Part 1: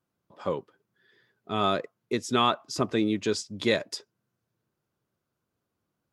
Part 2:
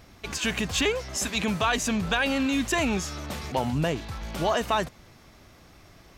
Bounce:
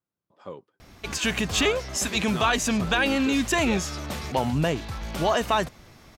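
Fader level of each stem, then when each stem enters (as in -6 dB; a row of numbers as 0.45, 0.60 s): -9.5, +2.0 dB; 0.00, 0.80 s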